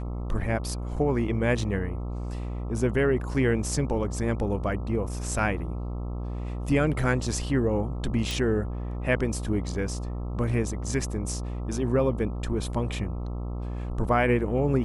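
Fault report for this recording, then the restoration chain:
buzz 60 Hz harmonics 22 -32 dBFS
8.31 pop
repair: de-click; de-hum 60 Hz, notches 22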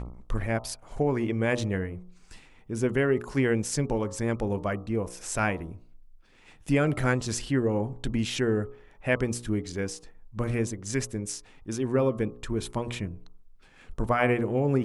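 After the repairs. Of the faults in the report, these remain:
8.31 pop

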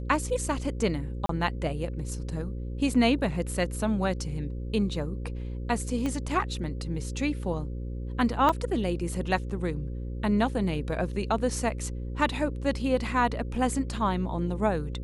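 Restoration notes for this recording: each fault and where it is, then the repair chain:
buzz 60 Hz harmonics 9 -34 dBFS
1.26–1.29 gap 33 ms
6.06 pop -18 dBFS
8.49 gap 3.8 ms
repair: de-click; de-hum 60 Hz, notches 9; interpolate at 1.26, 33 ms; interpolate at 8.49, 3.8 ms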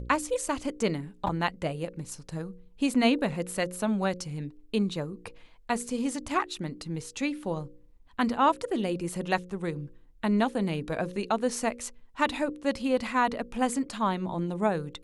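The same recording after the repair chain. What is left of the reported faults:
6.06 pop

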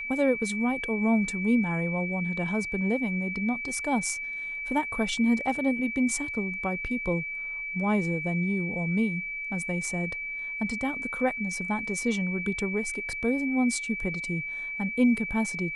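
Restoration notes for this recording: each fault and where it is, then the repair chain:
tone 2300 Hz -32 dBFS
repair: notch 2300 Hz, Q 30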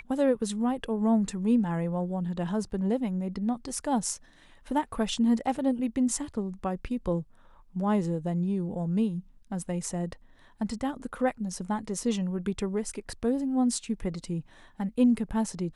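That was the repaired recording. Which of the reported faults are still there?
none

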